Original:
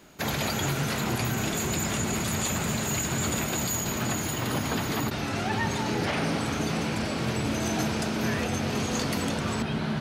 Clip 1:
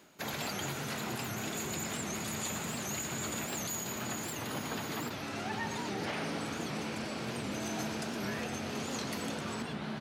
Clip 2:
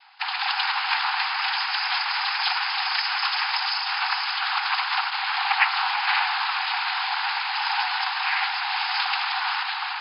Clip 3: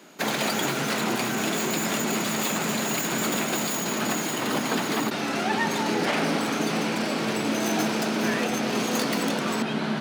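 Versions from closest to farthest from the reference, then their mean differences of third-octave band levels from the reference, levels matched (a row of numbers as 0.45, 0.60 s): 1, 3, 2; 2.0, 3.0, 26.0 dB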